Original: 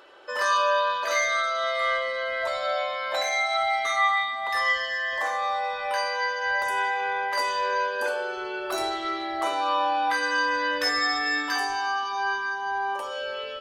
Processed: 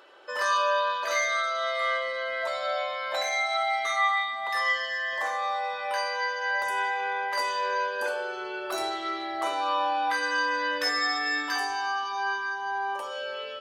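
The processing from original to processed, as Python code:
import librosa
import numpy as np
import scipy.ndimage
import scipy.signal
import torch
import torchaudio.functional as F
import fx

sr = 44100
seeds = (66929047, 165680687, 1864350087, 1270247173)

y = fx.low_shelf(x, sr, hz=120.0, db=-10.5)
y = y * librosa.db_to_amplitude(-2.0)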